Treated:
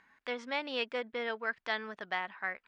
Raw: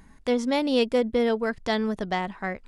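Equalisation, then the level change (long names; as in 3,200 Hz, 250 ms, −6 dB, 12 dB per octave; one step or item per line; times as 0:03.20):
resonant band-pass 1,900 Hz, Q 1.6
high-frequency loss of the air 50 metres
parametric band 2,000 Hz −4.5 dB 0.24 octaves
+1.5 dB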